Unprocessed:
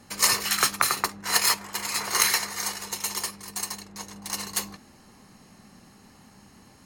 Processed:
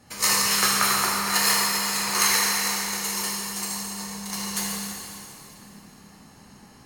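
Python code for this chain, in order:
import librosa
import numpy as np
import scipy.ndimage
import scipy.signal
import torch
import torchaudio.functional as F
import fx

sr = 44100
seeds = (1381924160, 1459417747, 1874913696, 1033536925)

y = fx.rev_plate(x, sr, seeds[0], rt60_s=2.8, hf_ratio=0.95, predelay_ms=0, drr_db=-5.5)
y = F.gain(torch.from_numpy(y), -3.5).numpy()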